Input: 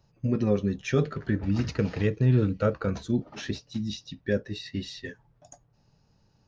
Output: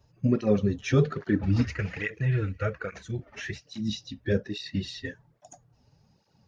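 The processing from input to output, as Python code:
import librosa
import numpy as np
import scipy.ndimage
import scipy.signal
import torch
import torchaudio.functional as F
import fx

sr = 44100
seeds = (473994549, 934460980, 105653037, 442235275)

y = fx.spec_quant(x, sr, step_db=15)
y = fx.graphic_eq(y, sr, hz=(125, 250, 500, 1000, 2000, 4000), db=(-5, -12, -4, -8, 10, -10), at=(1.64, 3.65))
y = fx.flanger_cancel(y, sr, hz=1.2, depth_ms=6.5)
y = F.gain(torch.from_numpy(y), 5.0).numpy()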